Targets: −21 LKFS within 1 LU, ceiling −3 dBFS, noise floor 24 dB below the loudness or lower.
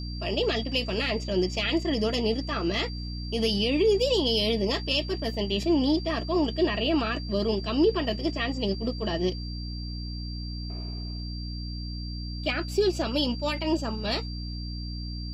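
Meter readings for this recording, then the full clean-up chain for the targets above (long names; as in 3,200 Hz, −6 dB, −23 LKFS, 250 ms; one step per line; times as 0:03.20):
mains hum 60 Hz; hum harmonics up to 300 Hz; level of the hum −32 dBFS; interfering tone 4,700 Hz; level of the tone −41 dBFS; integrated loudness −27.5 LKFS; sample peak −11.5 dBFS; target loudness −21.0 LKFS
→ hum removal 60 Hz, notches 5
notch filter 4,700 Hz, Q 30
level +6.5 dB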